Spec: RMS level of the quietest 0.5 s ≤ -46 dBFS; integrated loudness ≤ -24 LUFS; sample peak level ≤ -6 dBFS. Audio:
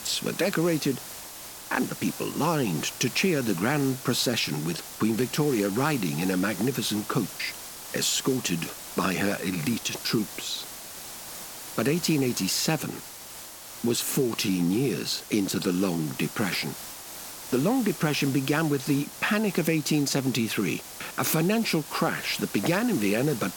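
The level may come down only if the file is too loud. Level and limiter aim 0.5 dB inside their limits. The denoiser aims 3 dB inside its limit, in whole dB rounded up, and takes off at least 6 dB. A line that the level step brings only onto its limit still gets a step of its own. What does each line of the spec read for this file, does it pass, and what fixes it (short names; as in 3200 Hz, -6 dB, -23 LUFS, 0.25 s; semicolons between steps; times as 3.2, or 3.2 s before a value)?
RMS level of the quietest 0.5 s -42 dBFS: fail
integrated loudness -26.5 LUFS: OK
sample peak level -11.0 dBFS: OK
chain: denoiser 7 dB, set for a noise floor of -42 dBFS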